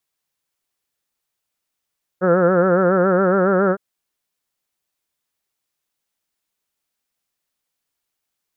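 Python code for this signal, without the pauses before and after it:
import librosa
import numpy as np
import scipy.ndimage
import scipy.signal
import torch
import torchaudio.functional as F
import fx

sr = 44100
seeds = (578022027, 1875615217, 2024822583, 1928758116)

y = fx.vowel(sr, seeds[0], length_s=1.56, word='heard', hz=177.0, glide_st=1.5, vibrato_hz=7.2, vibrato_st=0.9)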